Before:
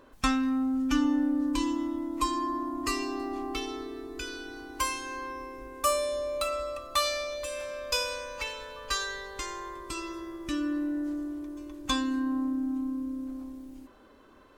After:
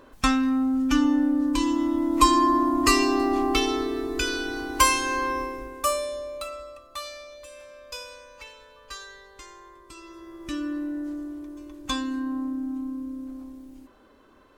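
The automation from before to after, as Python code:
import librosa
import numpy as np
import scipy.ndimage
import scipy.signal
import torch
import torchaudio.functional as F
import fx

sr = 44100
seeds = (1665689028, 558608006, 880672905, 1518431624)

y = fx.gain(x, sr, db=fx.line((1.61, 4.5), (2.21, 11.0), (5.39, 11.0), (5.84, 2.0), (6.89, -9.0), (9.97, -9.0), (10.48, 0.0)))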